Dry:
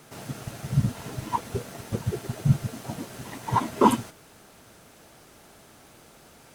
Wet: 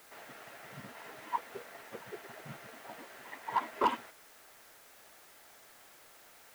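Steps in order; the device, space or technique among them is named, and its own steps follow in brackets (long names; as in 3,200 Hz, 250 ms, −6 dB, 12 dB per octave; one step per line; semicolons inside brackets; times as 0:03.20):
drive-through speaker (band-pass filter 540–2,900 Hz; parametric band 1,900 Hz +6 dB 0.51 octaves; hard clipping −14 dBFS, distortion −15 dB; white noise bed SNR 18 dB)
level −6.5 dB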